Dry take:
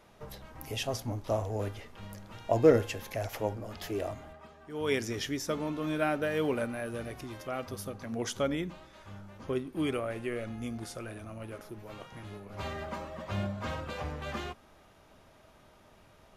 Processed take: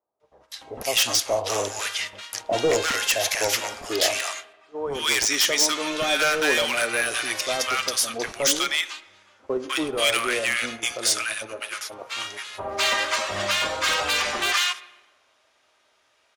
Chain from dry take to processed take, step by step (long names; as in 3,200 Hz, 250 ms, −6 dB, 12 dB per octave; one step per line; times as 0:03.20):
meter weighting curve ITU-R 468
noise gate −46 dBFS, range −18 dB
parametric band 170 Hz −13.5 dB 0.65 octaves
automatic gain control gain up to 14.5 dB
in parallel at +2 dB: brickwall limiter −12.5 dBFS, peak gain reduction 10.5 dB
on the sum: wave folding −8 dBFS
multiband delay without the direct sound lows, highs 200 ms, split 940 Hz
on a send at −17 dB: convolution reverb RT60 1.3 s, pre-delay 44 ms
on the sum: one half of a high-frequency compander decoder only
level −5 dB